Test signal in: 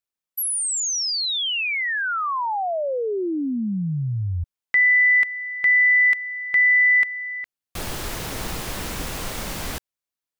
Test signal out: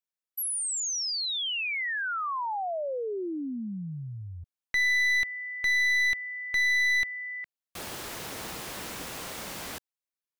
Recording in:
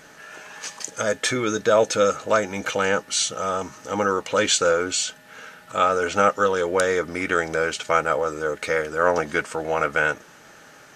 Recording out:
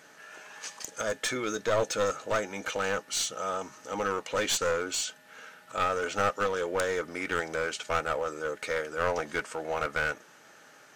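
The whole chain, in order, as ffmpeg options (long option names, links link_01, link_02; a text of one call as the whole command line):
ffmpeg -i in.wav -af "highpass=frequency=240:poles=1,aeval=exprs='clip(val(0),-1,0.1)':channel_layout=same,volume=-6.5dB" out.wav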